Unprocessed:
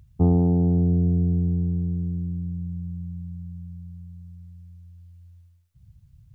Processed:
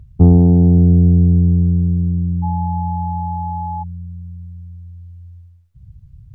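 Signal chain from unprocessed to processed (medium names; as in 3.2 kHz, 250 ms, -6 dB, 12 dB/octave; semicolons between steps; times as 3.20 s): tilt EQ -2 dB/octave; 2.42–3.82 s: whistle 850 Hz -27 dBFS; trim +4 dB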